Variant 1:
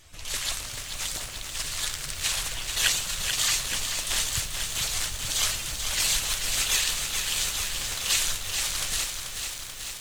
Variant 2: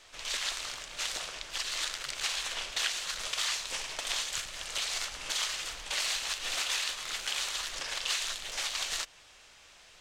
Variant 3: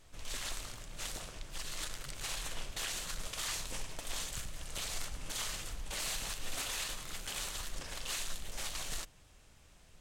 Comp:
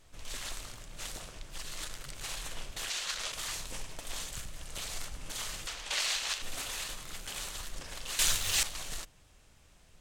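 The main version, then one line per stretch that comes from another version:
3
2.90–3.32 s: from 2
5.67–6.42 s: from 2
8.19–8.63 s: from 1

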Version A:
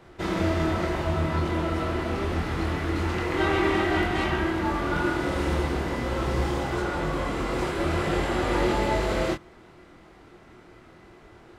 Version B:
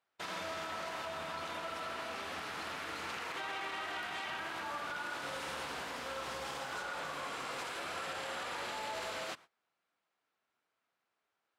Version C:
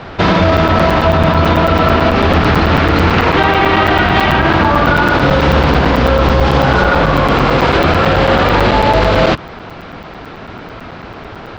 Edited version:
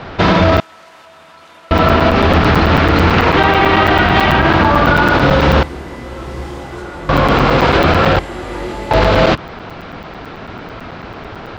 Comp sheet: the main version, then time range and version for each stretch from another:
C
0.60–1.71 s: from B
5.63–7.09 s: from A
8.19–8.91 s: from A

